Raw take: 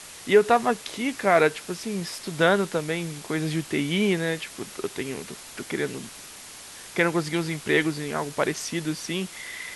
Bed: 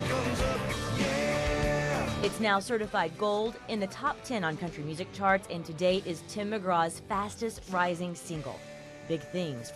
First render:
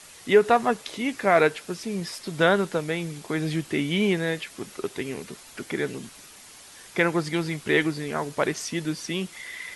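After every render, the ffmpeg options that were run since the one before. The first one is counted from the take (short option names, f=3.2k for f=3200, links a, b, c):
-af "afftdn=nr=6:nf=-43"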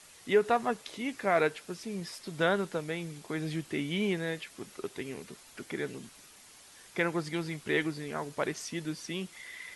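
-af "volume=-7.5dB"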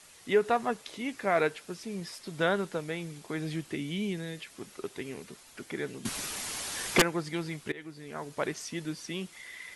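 -filter_complex "[0:a]asettb=1/sr,asplit=3[a][b][c];[a]atrim=end=3.754[d];[b]atrim=start=3.75:end=4.48,asetpts=PTS-STARTPTS,afade=t=in:d=0.004:c=qsin,afade=t=out:st=0.726:d=0.004:c=qsin,acrossover=split=320|3000[e][f][g];[f]acompressor=threshold=-42dB:ratio=6:attack=3.2:release=140:knee=2.83:detection=peak[h];[e][h][g]amix=inputs=3:normalize=0[i];[c]atrim=start=4.476[j];[d][i]acrossfade=d=0.004:c1=hsin:c2=qsin[k];[k][j]acrossfade=d=0.004:c1=qsin:c2=hsin,asettb=1/sr,asplit=3[l][m][n];[l]atrim=end=6.054[o];[m]atrim=start=6.05:end=7.02,asetpts=PTS-STARTPTS,afade=t=in:d=0.004:c=qsin,afade=t=out:st=0.966:d=0.004:c=qsin,aeval=exprs='0.168*sin(PI/2*5.01*val(0)/0.168)':c=same[p];[n]atrim=start=7.016[q];[o][p]acrossfade=d=0.004:c1=hsin:c2=qsin[r];[r][q]acrossfade=d=0.004:c1=qsin:c2=hsin,asplit=2[s][t];[s]atrim=end=7.72,asetpts=PTS-STARTPTS,afade=t=out:st=7.716:d=0.004:c=hsin:silence=0.0749894[u];[t]atrim=start=7.72,asetpts=PTS-STARTPTS,afade=t=in:d=0.68:silence=0.0749894[v];[u][v]concat=n=2:v=0:a=1"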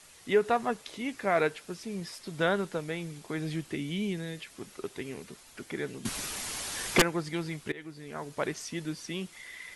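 -af "lowshelf=f=75:g=6"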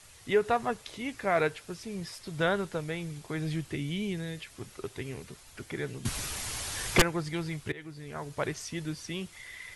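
-af "lowshelf=f=150:t=q:w=1.5:g=8"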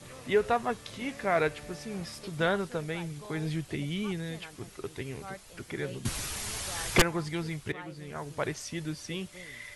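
-filter_complex "[1:a]volume=-18dB[a];[0:a][a]amix=inputs=2:normalize=0"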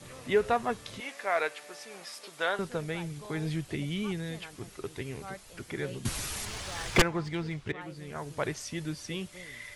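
-filter_complex "[0:a]asettb=1/sr,asplit=3[a][b][c];[a]atrim=end=1.004[d];[b]atrim=start=1:end=2.59,asetpts=PTS-STARTPTS,afade=t=in:d=0.004:c=qsin,afade=t=out:st=1.586:d=0.004:c=qsin,highpass=590[e];[c]atrim=start=2.586[f];[d][e]acrossfade=d=0.004:c1=hsin:c2=qsin[g];[g][f]acrossfade=d=0.004:c1=qsin:c2=hsin,asettb=1/sr,asplit=3[h][i][j];[h]atrim=end=6.454[k];[i]atrim=start=6.45:end=7.81,asetpts=PTS-STARTPTS,afade=t=in:d=0.004:c=qsin,afade=t=out:st=1.356:d=0.004:c=qsin,adynamicsmooth=sensitivity=7:basefreq=4.9k[l];[j]atrim=start=7.806[m];[k][l]acrossfade=d=0.004:c1=hsin:c2=qsin[n];[n][m]acrossfade=d=0.004:c1=qsin:c2=hsin"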